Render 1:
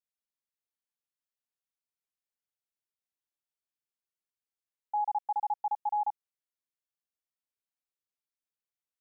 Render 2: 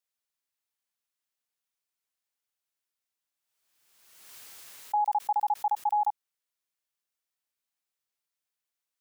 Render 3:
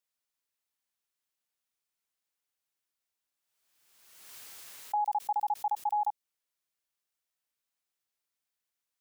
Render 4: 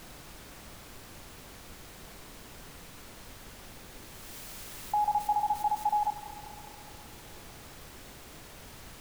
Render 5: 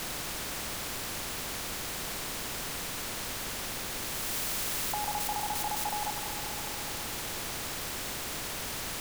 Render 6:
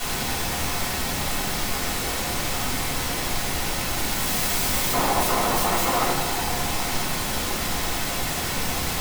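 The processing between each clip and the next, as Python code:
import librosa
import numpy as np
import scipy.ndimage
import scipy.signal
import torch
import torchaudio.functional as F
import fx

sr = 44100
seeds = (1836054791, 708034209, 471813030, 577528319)

y1 = fx.low_shelf(x, sr, hz=500.0, db=-8.5)
y1 = fx.pre_swell(y1, sr, db_per_s=40.0)
y1 = y1 * 10.0 ** (6.0 / 20.0)
y2 = fx.dynamic_eq(y1, sr, hz=1400.0, q=0.81, threshold_db=-40.0, ratio=4.0, max_db=-6)
y3 = fx.reverse_delay_fb(y2, sr, ms=103, feedback_pct=81, wet_db=-13.5)
y3 = fx.dmg_noise_colour(y3, sr, seeds[0], colour='pink', level_db=-50.0)
y3 = y3 * 10.0 ** (2.0 / 20.0)
y4 = fx.spectral_comp(y3, sr, ratio=2.0)
y5 = fx.cycle_switch(y4, sr, every=2, mode='inverted')
y5 = fx.room_shoebox(y5, sr, seeds[1], volume_m3=380.0, walls='furnished', distance_m=6.7)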